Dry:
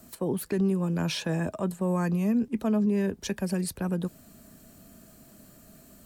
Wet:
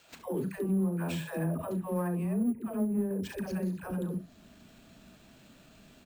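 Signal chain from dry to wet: dispersion lows, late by 0.125 s, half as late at 500 Hz; on a send: early reflections 37 ms -12 dB, 68 ms -12.5 dB; on the sum: treble ducked by the level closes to 830 Hz, closed at -20.5 dBFS; careless resampling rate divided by 4×, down none, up hold; in parallel at -11 dB: hard clip -26 dBFS, distortion -10 dB; 2.48–3.11 on the sum: upward expander 1.5:1, over -31 dBFS; gain -6 dB

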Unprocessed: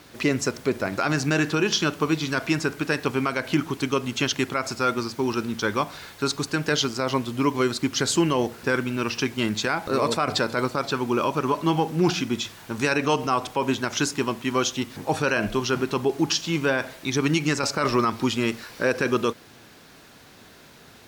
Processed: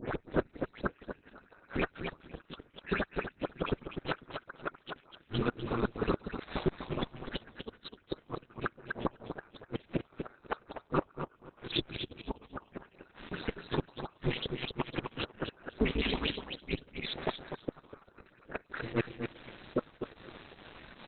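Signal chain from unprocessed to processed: slices in reverse order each 0.104 s, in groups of 8; HPF 51 Hz 12 dB/oct; dynamic EQ 1400 Hz, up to +7 dB, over -40 dBFS, Q 2.5; in parallel at -2 dB: compressor 8:1, threshold -35 dBFS, peak gain reduction 21 dB; on the sum: dispersion highs, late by 0.121 s, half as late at 2800 Hz; pump 149 bpm, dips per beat 1, -18 dB, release 83 ms; flipped gate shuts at -14 dBFS, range -33 dB; ring modulator 110 Hz; feedback echo 0.249 s, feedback 19%, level -7 dB; Opus 6 kbps 48000 Hz

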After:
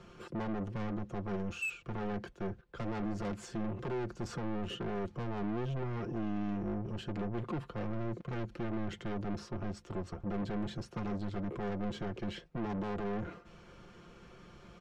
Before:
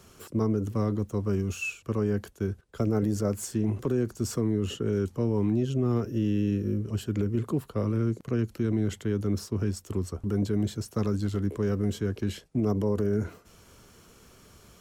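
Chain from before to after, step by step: LPF 3000 Hz 12 dB/oct; soft clip -34.5 dBFS, distortion -4 dB; comb 5.7 ms, depth 55%

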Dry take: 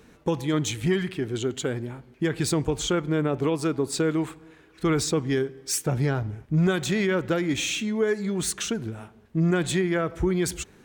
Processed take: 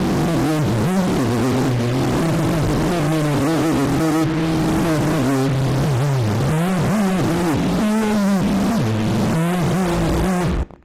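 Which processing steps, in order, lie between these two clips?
spectral swells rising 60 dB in 1.69 s; inverse Chebyshev low-pass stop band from 790 Hz, stop band 50 dB; 1.62–2.53 de-hum 48.33 Hz, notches 34; in parallel at 0 dB: limiter -24.5 dBFS, peak gain reduction 10.5 dB; on the sum: fuzz box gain 47 dB, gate -40 dBFS; on a send at -17.5 dB: reverb RT60 0.65 s, pre-delay 14 ms; on the sum: gain -3.5 dB; AAC 48 kbps 32000 Hz

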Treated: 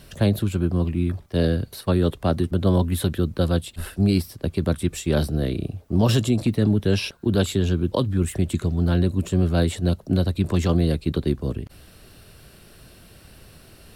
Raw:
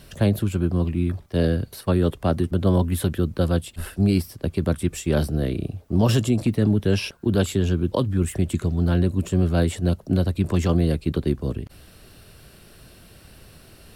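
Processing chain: dynamic EQ 3900 Hz, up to +6 dB, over -53 dBFS, Q 4.6

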